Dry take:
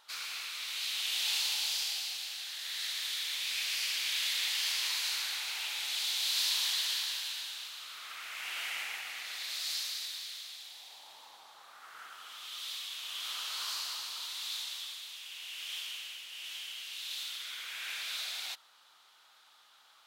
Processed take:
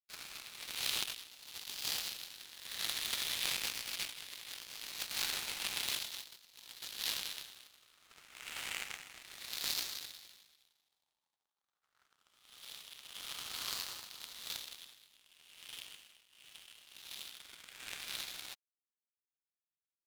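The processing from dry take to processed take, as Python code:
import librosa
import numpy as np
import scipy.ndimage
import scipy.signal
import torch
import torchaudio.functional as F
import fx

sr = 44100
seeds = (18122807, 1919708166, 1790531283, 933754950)

y = fx.power_curve(x, sr, exponent=3.0)
y = fx.over_compress(y, sr, threshold_db=-56.0, ratio=-0.5)
y = y * librosa.db_to_amplitude(16.0)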